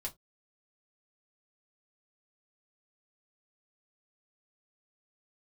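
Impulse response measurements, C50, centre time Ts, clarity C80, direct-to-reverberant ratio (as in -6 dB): 21.5 dB, 9 ms, 31.5 dB, -2.0 dB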